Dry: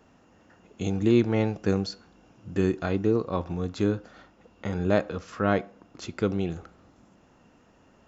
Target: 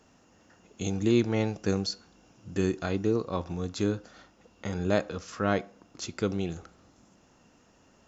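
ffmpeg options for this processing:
-af "equalizer=f=6.2k:w=0.84:g=9.5,volume=-3dB"

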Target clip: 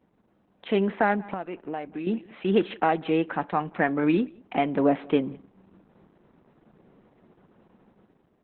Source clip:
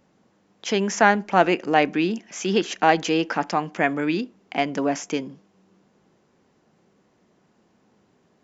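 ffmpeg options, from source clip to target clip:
-filter_complex "[0:a]asplit=3[a][b][c];[a]afade=t=out:st=3.21:d=0.02[d];[b]equalizer=f=350:w=0.56:g=-4,afade=t=in:st=3.21:d=0.02,afade=t=out:st=3.79:d=0.02[e];[c]afade=t=in:st=3.79:d=0.02[f];[d][e][f]amix=inputs=3:normalize=0,dynaudnorm=f=170:g=7:m=8dB,asplit=2[g][h];[h]adelay=180.8,volume=-25dB,highshelf=f=4k:g=-4.07[i];[g][i]amix=inputs=2:normalize=0,asettb=1/sr,asplit=3[j][k][l];[j]atrim=end=1.334[m];[k]atrim=start=1.33:end=2.07,asetpts=PTS-STARTPTS,afade=t=in:d=0.004:c=qsin,afade=t=out:st=0.736:d=0.004:c=qsin,acompressor=threshold=-28dB:ratio=8[n];[l]atrim=start=2.066[o];[m][n]acrossfade=d=0.004:c1=hsin:c2=qsin[p];[p][o]acrossfade=d=0.004:c1=qsin:c2=hsin,lowpass=f=1.5k:p=1,alimiter=limit=-8.5dB:level=0:latency=1:release=251,volume=-1dB" -ar 48000 -c:a libopus -b:a 8k

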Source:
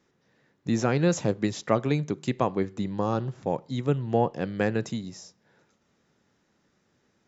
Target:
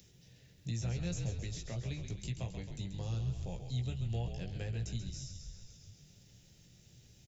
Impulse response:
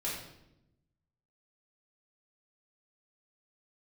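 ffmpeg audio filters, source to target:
-filter_complex "[0:a]acrossover=split=100|830|1700[a][b][c][d];[a]acompressor=threshold=-49dB:ratio=4[e];[b]acompressor=threshold=-36dB:ratio=4[f];[c]acompressor=threshold=-36dB:ratio=4[g];[d]acompressor=threshold=-48dB:ratio=4[h];[e][f][g][h]amix=inputs=4:normalize=0,highshelf=f=6.9k:g=11,asplit=2[i][j];[j]adelay=17,volume=-5dB[k];[i][k]amix=inputs=2:normalize=0,asplit=9[l][m][n][o][p][q][r][s][t];[m]adelay=134,afreqshift=-47,volume=-8dB[u];[n]adelay=268,afreqshift=-94,volume=-12.4dB[v];[o]adelay=402,afreqshift=-141,volume=-16.9dB[w];[p]adelay=536,afreqshift=-188,volume=-21.3dB[x];[q]adelay=670,afreqshift=-235,volume=-25.7dB[y];[r]adelay=804,afreqshift=-282,volume=-30.2dB[z];[s]adelay=938,afreqshift=-329,volume=-34.6dB[aa];[t]adelay=1072,afreqshift=-376,volume=-39.1dB[ab];[l][u][v][w][x][y][z][aa][ab]amix=inputs=9:normalize=0,asplit=2[ac][ad];[ad]acompressor=mode=upward:threshold=-36dB:ratio=2.5,volume=0dB[ae];[ac][ae]amix=inputs=2:normalize=0,firequalizer=gain_entry='entry(130,0);entry(240,-16);entry(420,-16);entry(630,-16);entry(1100,-28);entry(2700,-7)':delay=0.05:min_phase=1,volume=-4dB"

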